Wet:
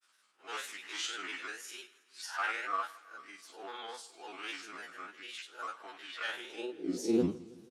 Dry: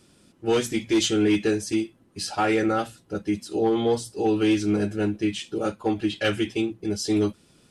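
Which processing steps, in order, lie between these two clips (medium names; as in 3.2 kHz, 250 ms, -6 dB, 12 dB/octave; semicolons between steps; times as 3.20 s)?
spectral blur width 97 ms; high-pass sweep 1.3 kHz -> 110 Hz, 6.17–7.51 s; granulator, spray 15 ms, pitch spread up and down by 3 st; on a send: feedback delay 162 ms, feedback 57%, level -21 dB; on the sum: trim -7 dB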